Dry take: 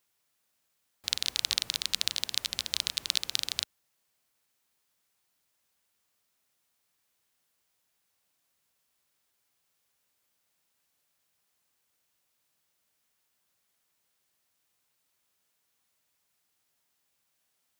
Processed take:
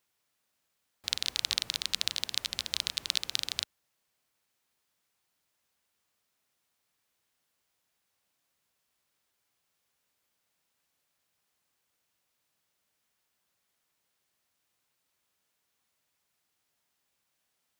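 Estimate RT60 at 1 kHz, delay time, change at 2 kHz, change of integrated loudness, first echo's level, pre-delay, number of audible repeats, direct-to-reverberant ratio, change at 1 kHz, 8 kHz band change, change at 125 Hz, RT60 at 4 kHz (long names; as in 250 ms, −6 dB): no reverb audible, no echo audible, −0.5 dB, −1.5 dB, no echo audible, no reverb audible, no echo audible, no reverb audible, 0.0 dB, −2.5 dB, 0.0 dB, no reverb audible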